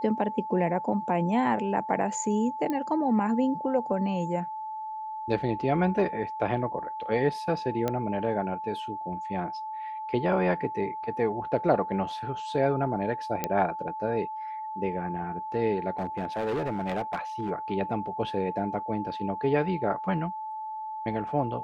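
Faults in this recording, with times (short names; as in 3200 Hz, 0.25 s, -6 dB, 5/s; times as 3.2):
tone 870 Hz -33 dBFS
2.7 pop -18 dBFS
7.88 pop -14 dBFS
13.44 pop -11 dBFS
15.98–17.51 clipped -25.5 dBFS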